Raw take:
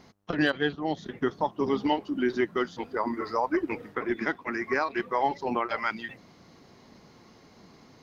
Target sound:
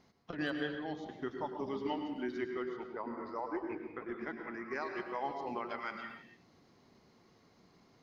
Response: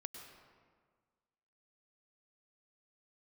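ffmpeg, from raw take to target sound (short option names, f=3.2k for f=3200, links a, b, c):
-filter_complex "[0:a]asettb=1/sr,asplit=3[a][b][c];[a]atrim=end=2.444[d];[b]atrim=start=2.44:end=4.71,asetpts=PTS-STARTPTS,afade=t=in:d=0.004:c=qsin,afade=t=out:st=2.266:d=0.004:c=qsin,aemphasis=mode=reproduction:type=75kf[e];[c]atrim=start=4.706[f];[d][e]acrossfade=d=0.004:c1=hsin:c2=qsin[g];[g][f]acrossfade=d=0.004:c1=qsin:c2=hsin[h];[1:a]atrim=start_sample=2205,afade=t=out:st=0.37:d=0.01,atrim=end_sample=16758[i];[h][i]afir=irnorm=-1:irlink=0,volume=-7dB"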